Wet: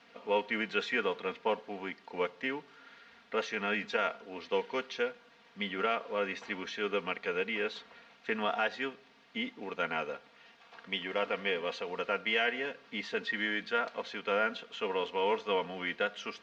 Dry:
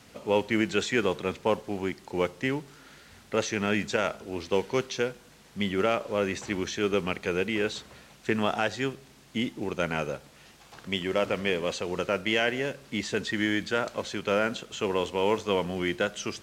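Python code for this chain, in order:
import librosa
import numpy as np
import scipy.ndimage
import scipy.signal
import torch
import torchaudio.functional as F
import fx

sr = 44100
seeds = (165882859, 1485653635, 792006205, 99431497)

y = fx.highpass(x, sr, hz=1000.0, slope=6)
y = fx.air_absorb(y, sr, metres=270.0)
y = y + 0.66 * np.pad(y, (int(4.3 * sr / 1000.0), 0))[:len(y)]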